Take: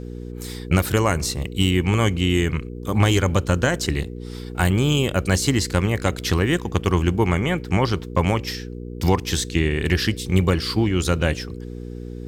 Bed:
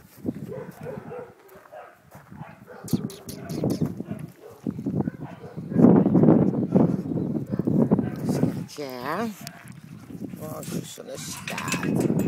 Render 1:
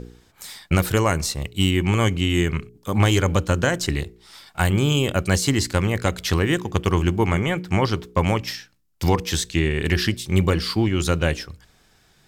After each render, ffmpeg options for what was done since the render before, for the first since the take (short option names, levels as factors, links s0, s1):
-af "bandreject=f=60:t=h:w=4,bandreject=f=120:t=h:w=4,bandreject=f=180:t=h:w=4,bandreject=f=240:t=h:w=4,bandreject=f=300:t=h:w=4,bandreject=f=360:t=h:w=4,bandreject=f=420:t=h:w=4,bandreject=f=480:t=h:w=4"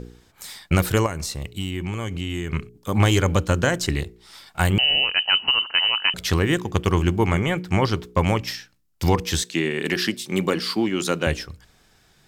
-filter_complex "[0:a]asettb=1/sr,asplit=3[s0][s1][s2];[s0]atrim=end=1.064[s3];[s1]atrim=start=1.06:end=2.53,asetpts=PTS-STARTPTS,afade=t=in:d=0.004:c=qsin,afade=t=out:st=1.466:d=0.004:c=qsin,acompressor=threshold=0.0501:ratio=3:attack=3.2:release=140:knee=1:detection=peak[s4];[s2]atrim=start=2.526[s5];[s3][s4]acrossfade=d=0.004:c1=hsin:c2=qsin[s6];[s6][s5]acrossfade=d=0.004:c1=qsin:c2=hsin,asettb=1/sr,asplit=3[s7][s8][s9];[s7]atrim=end=4.784[s10];[s8]atrim=start=4.78:end=6.14,asetpts=PTS-STARTPTS,afade=t=in:d=0.004:c=qsin,afade=t=out:st=1.356:d=0.004:c=qsin,lowpass=f=2600:t=q:w=0.5098,lowpass=f=2600:t=q:w=0.6013,lowpass=f=2600:t=q:w=0.9,lowpass=f=2600:t=q:w=2.563,afreqshift=-3100[s11];[s9]atrim=start=6.136[s12];[s10][s11]acrossfade=d=0.004:c1=hsin:c2=qsin[s13];[s13][s12]acrossfade=d=0.004:c1=qsin:c2=hsin,asettb=1/sr,asplit=3[s14][s15][s16];[s14]atrim=end=9.434[s17];[s15]atrim=start=9.43:end=11.27,asetpts=PTS-STARTPTS,afade=t=in:d=0.004:c=qsin,afade=t=out:st=1.836:d=0.004:c=qsin,highpass=f=180:w=0.5412,highpass=f=180:w=1.3066[s18];[s16]atrim=start=11.266[s19];[s17][s18]acrossfade=d=0.004:c1=hsin:c2=qsin[s20];[s20][s19]acrossfade=d=0.004:c1=qsin:c2=hsin"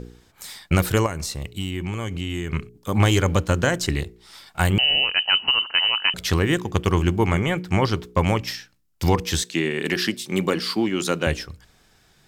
-filter_complex "[0:a]asettb=1/sr,asplit=3[s0][s1][s2];[s0]atrim=end=3.124[s3];[s1]atrim=start=3.12:end=3.67,asetpts=PTS-STARTPTS,afade=t=in:d=0.004:c=qsin,afade=t=out:st=0.546:d=0.004:c=qsin,aeval=exprs='sgn(val(0))*max(abs(val(0))-0.00316,0)':c=same[s4];[s2]atrim=start=3.666[s5];[s3][s4]acrossfade=d=0.004:c1=hsin:c2=qsin[s6];[s6][s5]acrossfade=d=0.004:c1=qsin:c2=hsin"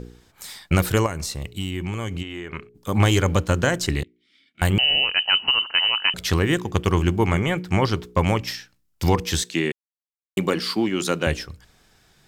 -filter_complex "[0:a]asplit=3[s0][s1][s2];[s0]afade=t=out:st=2.22:d=0.02[s3];[s1]bass=f=250:g=-13,treble=f=4000:g=-14,afade=t=in:st=2.22:d=0.02,afade=t=out:st=2.74:d=0.02[s4];[s2]afade=t=in:st=2.74:d=0.02[s5];[s3][s4][s5]amix=inputs=3:normalize=0,asettb=1/sr,asplit=3[s6][s7][s8];[s6]atrim=end=4.034[s9];[s7]atrim=start=4.03:end=4.62,asetpts=PTS-STARTPTS,afade=t=in:d=0.004:c=qsin,afade=t=out:st=0.586:d=0.004:c=qsin,asplit=3[s10][s11][s12];[s10]bandpass=f=270:t=q:w=8,volume=1[s13];[s11]bandpass=f=2290:t=q:w=8,volume=0.501[s14];[s12]bandpass=f=3010:t=q:w=8,volume=0.355[s15];[s13][s14][s15]amix=inputs=3:normalize=0[s16];[s8]atrim=start=4.616[s17];[s9][s16]acrossfade=d=0.004:c1=hsin:c2=qsin[s18];[s18][s17]acrossfade=d=0.004:c1=qsin:c2=hsin,asplit=3[s19][s20][s21];[s19]atrim=end=9.72,asetpts=PTS-STARTPTS,afade=t=out:st=9.716:d=0.004:c=hsin[s22];[s20]atrim=start=9.72:end=10.37,asetpts=PTS-STARTPTS,volume=0[s23];[s21]atrim=start=10.37,asetpts=PTS-STARTPTS,afade=t=in:d=0.004:c=hsin[s24];[s22][s23][s24]concat=n=3:v=0:a=1"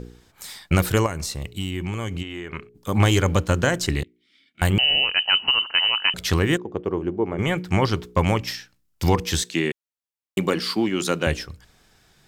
-filter_complex "[0:a]asplit=3[s0][s1][s2];[s0]afade=t=out:st=6.56:d=0.02[s3];[s1]bandpass=f=420:t=q:w=1.3,afade=t=in:st=6.56:d=0.02,afade=t=out:st=7.38:d=0.02[s4];[s2]afade=t=in:st=7.38:d=0.02[s5];[s3][s4][s5]amix=inputs=3:normalize=0"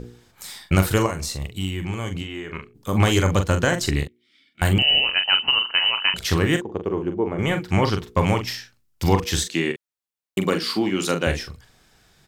-filter_complex "[0:a]asplit=2[s0][s1];[s1]adelay=42,volume=0.422[s2];[s0][s2]amix=inputs=2:normalize=0"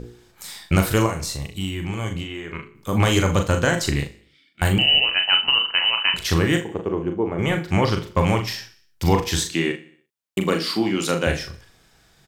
-filter_complex "[0:a]asplit=2[s0][s1];[s1]adelay=36,volume=0.355[s2];[s0][s2]amix=inputs=2:normalize=0,aecho=1:1:61|122|183|244|305:0.126|0.068|0.0367|0.0198|0.0107"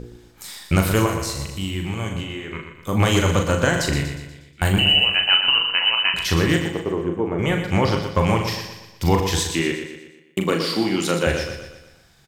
-af "aecho=1:1:120|240|360|480|600|720:0.398|0.191|0.0917|0.044|0.0211|0.0101"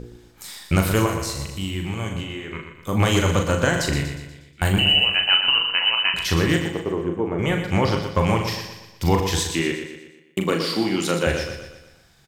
-af "volume=0.891"